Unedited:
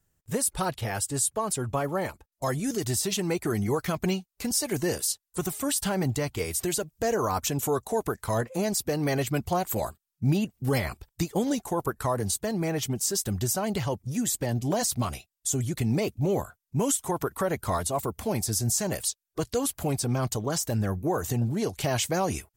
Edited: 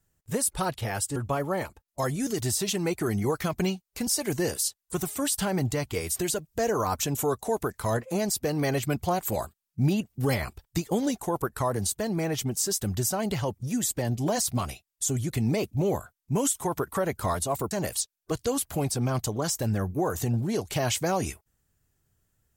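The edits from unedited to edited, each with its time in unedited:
1.16–1.60 s: delete
18.15–18.79 s: delete

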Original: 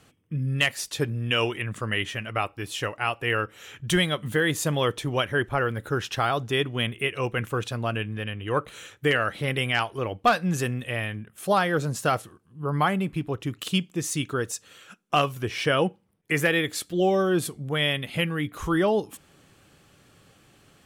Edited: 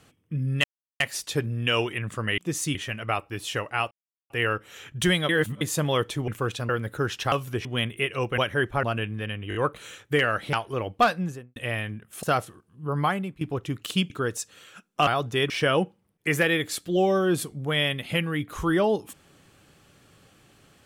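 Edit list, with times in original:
0.64 s: insert silence 0.36 s
3.18 s: insert silence 0.39 s
4.17–4.49 s: reverse
5.16–5.61 s: swap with 7.40–7.81 s
6.24–6.67 s: swap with 15.21–15.54 s
8.47 s: stutter 0.02 s, 4 plays
9.45–9.78 s: delete
10.28–10.81 s: studio fade out
11.48–12.00 s: delete
12.61–13.18 s: fade out equal-power, to -15 dB
13.87–14.24 s: move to 2.02 s

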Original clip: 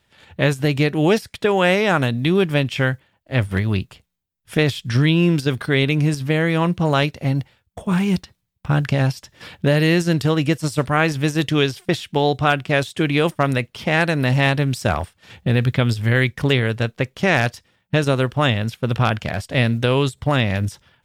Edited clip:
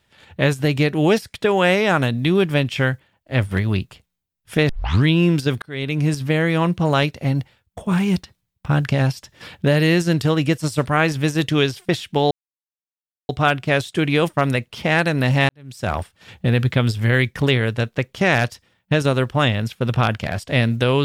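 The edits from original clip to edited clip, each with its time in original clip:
4.69 s: tape start 0.35 s
5.62–6.10 s: fade in
12.31 s: insert silence 0.98 s
14.51–14.98 s: fade in quadratic

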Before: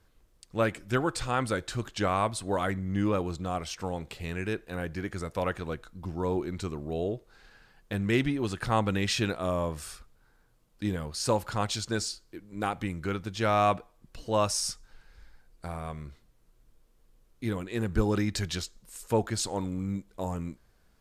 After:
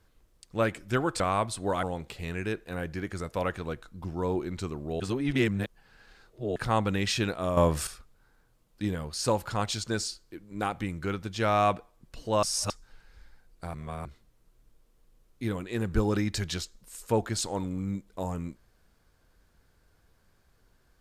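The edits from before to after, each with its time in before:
1.20–2.04 s: delete
2.67–3.84 s: delete
7.01–8.57 s: reverse
9.58–9.88 s: gain +8.5 dB
14.44–14.71 s: reverse
15.75–16.06 s: reverse

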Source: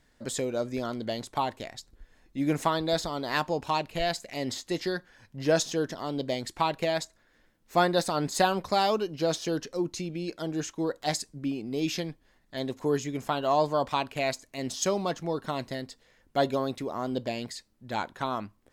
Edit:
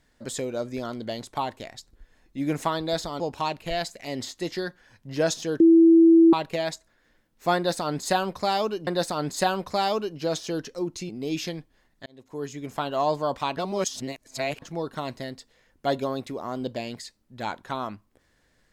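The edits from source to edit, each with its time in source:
3.20–3.49 s: delete
5.89–6.62 s: bleep 330 Hz -11 dBFS
7.85–9.16 s: loop, 2 plays
10.07–11.60 s: delete
12.57–13.32 s: fade in
14.08–15.13 s: reverse

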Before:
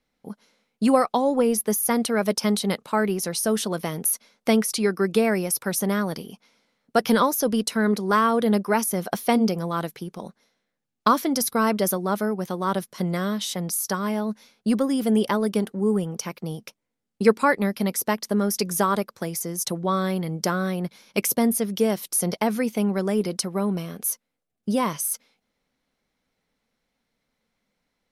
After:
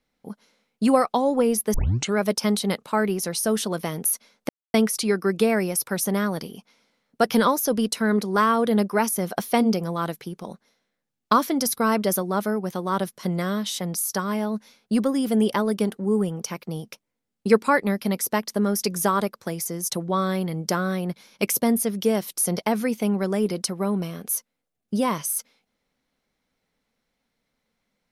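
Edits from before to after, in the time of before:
1.74 s: tape start 0.43 s
4.49 s: insert silence 0.25 s

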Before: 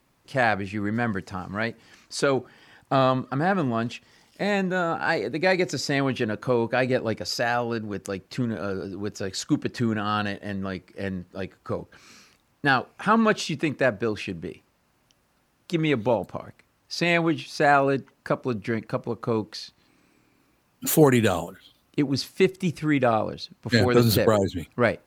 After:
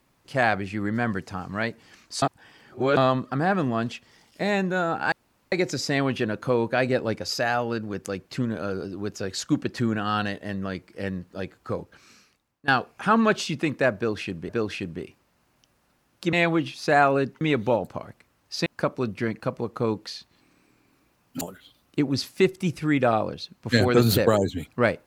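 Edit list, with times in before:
2.22–2.97 s: reverse
5.12–5.52 s: room tone
11.77–12.68 s: fade out, to -21 dB
13.96–14.49 s: loop, 2 plays
17.05–18.13 s: move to 15.80 s
20.88–21.41 s: delete

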